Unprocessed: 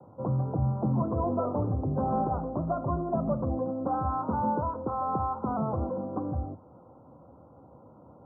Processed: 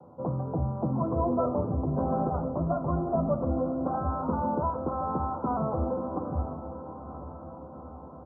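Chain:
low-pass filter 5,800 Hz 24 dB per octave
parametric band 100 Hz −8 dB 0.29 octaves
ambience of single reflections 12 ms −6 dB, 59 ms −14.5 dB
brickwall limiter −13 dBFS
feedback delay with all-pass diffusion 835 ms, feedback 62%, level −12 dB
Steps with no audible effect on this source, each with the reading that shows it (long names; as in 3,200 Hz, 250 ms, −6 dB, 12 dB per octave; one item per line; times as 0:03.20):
low-pass filter 5,800 Hz: nothing at its input above 1,500 Hz
brickwall limiter −13 dBFS: peak of its input −14.5 dBFS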